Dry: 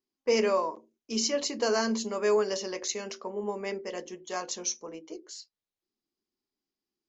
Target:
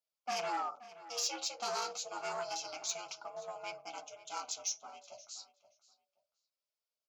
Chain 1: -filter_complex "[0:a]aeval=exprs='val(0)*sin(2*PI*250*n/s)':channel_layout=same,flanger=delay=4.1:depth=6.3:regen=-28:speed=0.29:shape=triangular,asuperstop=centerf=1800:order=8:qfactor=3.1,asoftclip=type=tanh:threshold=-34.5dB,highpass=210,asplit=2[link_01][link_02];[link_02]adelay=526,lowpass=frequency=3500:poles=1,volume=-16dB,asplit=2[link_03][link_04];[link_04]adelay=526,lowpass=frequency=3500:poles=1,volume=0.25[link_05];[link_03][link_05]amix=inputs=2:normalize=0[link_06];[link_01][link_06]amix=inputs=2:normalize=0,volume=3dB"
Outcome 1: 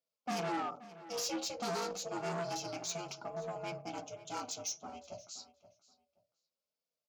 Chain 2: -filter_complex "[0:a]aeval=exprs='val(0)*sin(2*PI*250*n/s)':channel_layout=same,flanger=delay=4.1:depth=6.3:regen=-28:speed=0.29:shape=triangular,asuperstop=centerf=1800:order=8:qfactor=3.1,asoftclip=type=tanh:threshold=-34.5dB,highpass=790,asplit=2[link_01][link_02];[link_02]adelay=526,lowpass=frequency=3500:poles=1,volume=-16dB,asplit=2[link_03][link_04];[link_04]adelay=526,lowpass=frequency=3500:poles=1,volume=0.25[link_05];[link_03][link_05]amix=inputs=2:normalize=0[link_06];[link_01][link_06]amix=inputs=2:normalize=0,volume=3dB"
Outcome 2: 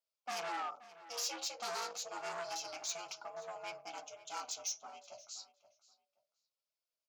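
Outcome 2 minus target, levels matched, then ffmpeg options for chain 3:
soft clipping: distortion +7 dB
-filter_complex "[0:a]aeval=exprs='val(0)*sin(2*PI*250*n/s)':channel_layout=same,flanger=delay=4.1:depth=6.3:regen=-28:speed=0.29:shape=triangular,asuperstop=centerf=1800:order=8:qfactor=3.1,asoftclip=type=tanh:threshold=-27dB,highpass=790,asplit=2[link_01][link_02];[link_02]adelay=526,lowpass=frequency=3500:poles=1,volume=-16dB,asplit=2[link_03][link_04];[link_04]adelay=526,lowpass=frequency=3500:poles=1,volume=0.25[link_05];[link_03][link_05]amix=inputs=2:normalize=0[link_06];[link_01][link_06]amix=inputs=2:normalize=0,volume=3dB"

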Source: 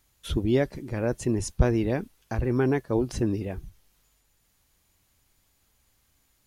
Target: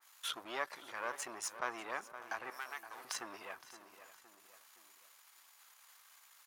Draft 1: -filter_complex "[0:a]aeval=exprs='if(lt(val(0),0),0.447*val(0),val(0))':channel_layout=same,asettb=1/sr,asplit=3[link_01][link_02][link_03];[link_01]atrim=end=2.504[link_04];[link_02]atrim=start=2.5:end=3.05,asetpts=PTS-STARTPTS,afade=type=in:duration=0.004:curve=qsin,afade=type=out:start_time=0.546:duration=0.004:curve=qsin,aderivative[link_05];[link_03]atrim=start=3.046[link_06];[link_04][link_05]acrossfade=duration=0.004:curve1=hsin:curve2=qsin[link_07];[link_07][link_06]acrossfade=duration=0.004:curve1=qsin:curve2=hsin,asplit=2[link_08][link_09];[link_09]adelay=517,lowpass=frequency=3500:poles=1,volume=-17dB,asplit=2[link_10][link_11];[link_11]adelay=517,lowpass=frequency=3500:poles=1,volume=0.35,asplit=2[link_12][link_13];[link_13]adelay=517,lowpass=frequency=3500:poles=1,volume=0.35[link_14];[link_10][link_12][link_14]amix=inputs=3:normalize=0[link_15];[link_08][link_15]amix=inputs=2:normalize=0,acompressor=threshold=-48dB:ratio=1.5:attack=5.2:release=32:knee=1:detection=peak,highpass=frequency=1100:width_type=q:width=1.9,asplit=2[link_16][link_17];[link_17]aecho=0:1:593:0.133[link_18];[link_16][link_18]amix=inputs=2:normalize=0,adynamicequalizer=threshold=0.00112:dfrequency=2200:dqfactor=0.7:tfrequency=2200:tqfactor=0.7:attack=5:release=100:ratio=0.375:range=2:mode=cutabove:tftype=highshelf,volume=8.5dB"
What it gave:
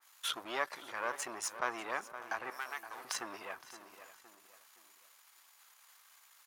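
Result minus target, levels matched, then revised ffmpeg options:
downward compressor: peak gain reduction −3.5 dB
-filter_complex "[0:a]aeval=exprs='if(lt(val(0),0),0.447*val(0),val(0))':channel_layout=same,asettb=1/sr,asplit=3[link_01][link_02][link_03];[link_01]atrim=end=2.504[link_04];[link_02]atrim=start=2.5:end=3.05,asetpts=PTS-STARTPTS,afade=type=in:duration=0.004:curve=qsin,afade=type=out:start_time=0.546:duration=0.004:curve=qsin,aderivative[link_05];[link_03]atrim=start=3.046[link_06];[link_04][link_05]acrossfade=duration=0.004:curve1=hsin:curve2=qsin[link_07];[link_07][link_06]acrossfade=duration=0.004:curve1=qsin:curve2=hsin,asplit=2[link_08][link_09];[link_09]adelay=517,lowpass=frequency=3500:poles=1,volume=-17dB,asplit=2[link_10][link_11];[link_11]adelay=517,lowpass=frequency=3500:poles=1,volume=0.35,asplit=2[link_12][link_13];[link_13]adelay=517,lowpass=frequency=3500:poles=1,volume=0.35[link_14];[link_10][link_12][link_14]amix=inputs=3:normalize=0[link_15];[link_08][link_15]amix=inputs=2:normalize=0,acompressor=threshold=-58.5dB:ratio=1.5:attack=5.2:release=32:knee=1:detection=peak,highpass=frequency=1100:width_type=q:width=1.9,asplit=2[link_16][link_17];[link_17]aecho=0:1:593:0.133[link_18];[link_16][link_18]amix=inputs=2:normalize=0,adynamicequalizer=threshold=0.00112:dfrequency=2200:dqfactor=0.7:tfrequency=2200:tqfactor=0.7:attack=5:release=100:ratio=0.375:range=2:mode=cutabove:tftype=highshelf,volume=8.5dB"

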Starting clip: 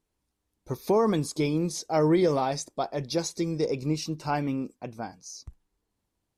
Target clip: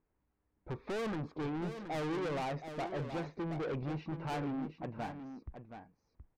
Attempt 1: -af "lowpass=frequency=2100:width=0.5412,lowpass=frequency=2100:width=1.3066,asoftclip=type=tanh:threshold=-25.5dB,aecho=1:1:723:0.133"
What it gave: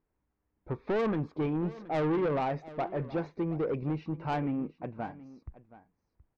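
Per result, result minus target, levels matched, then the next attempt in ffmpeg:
echo-to-direct −8.5 dB; soft clipping: distortion −6 dB
-af "lowpass=frequency=2100:width=0.5412,lowpass=frequency=2100:width=1.3066,asoftclip=type=tanh:threshold=-25.5dB,aecho=1:1:723:0.355"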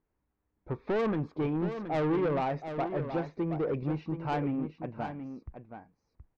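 soft clipping: distortion −6 dB
-af "lowpass=frequency=2100:width=0.5412,lowpass=frequency=2100:width=1.3066,asoftclip=type=tanh:threshold=-35dB,aecho=1:1:723:0.355"

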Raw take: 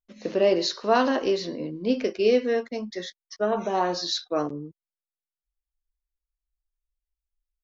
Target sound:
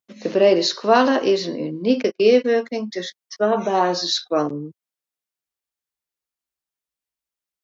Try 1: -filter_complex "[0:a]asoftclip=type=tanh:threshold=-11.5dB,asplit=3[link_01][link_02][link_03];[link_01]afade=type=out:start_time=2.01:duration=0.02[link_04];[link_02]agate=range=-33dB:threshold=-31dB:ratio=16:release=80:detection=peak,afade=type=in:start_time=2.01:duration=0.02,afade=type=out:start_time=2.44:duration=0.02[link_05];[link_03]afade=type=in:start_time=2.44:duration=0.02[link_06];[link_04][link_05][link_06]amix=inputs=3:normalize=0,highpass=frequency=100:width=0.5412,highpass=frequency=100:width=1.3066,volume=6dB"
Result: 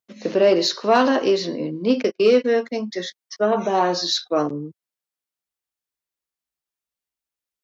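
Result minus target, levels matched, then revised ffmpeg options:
soft clipping: distortion +19 dB
-filter_complex "[0:a]asoftclip=type=tanh:threshold=-0.5dB,asplit=3[link_01][link_02][link_03];[link_01]afade=type=out:start_time=2.01:duration=0.02[link_04];[link_02]agate=range=-33dB:threshold=-31dB:ratio=16:release=80:detection=peak,afade=type=in:start_time=2.01:duration=0.02,afade=type=out:start_time=2.44:duration=0.02[link_05];[link_03]afade=type=in:start_time=2.44:duration=0.02[link_06];[link_04][link_05][link_06]amix=inputs=3:normalize=0,highpass=frequency=100:width=0.5412,highpass=frequency=100:width=1.3066,volume=6dB"

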